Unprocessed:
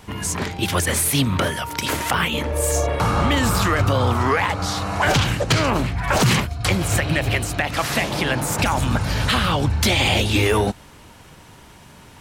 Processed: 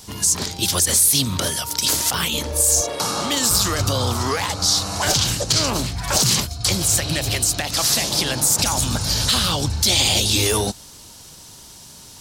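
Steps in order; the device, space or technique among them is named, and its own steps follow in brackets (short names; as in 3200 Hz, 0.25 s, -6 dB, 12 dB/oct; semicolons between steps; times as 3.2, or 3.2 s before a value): 2.81–3.51 HPF 220 Hz 12 dB/oct; over-bright horn tweeter (resonant high shelf 3300 Hz +13.5 dB, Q 1.5; limiter -3.5 dBFS, peak gain reduction 9 dB); gain -3 dB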